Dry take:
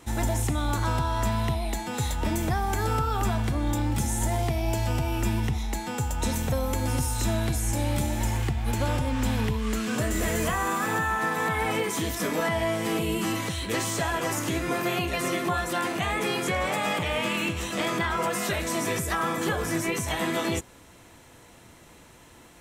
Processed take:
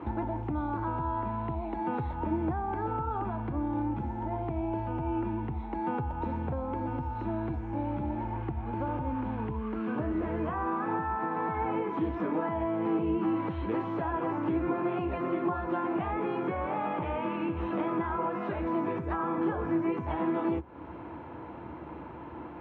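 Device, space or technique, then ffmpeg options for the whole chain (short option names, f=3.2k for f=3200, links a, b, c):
bass amplifier: -af "acompressor=threshold=-39dB:ratio=6,highpass=f=65:w=0.5412,highpass=f=65:w=1.3066,equalizer=f=72:t=q:w=4:g=6,equalizer=f=100:t=q:w=4:g=-4,equalizer=f=320:t=q:w=4:g=9,equalizer=f=910:t=q:w=4:g=7,equalizer=f=1.9k:t=q:w=4:g=-9,lowpass=f=2k:w=0.5412,lowpass=f=2k:w=1.3066,volume=7.5dB"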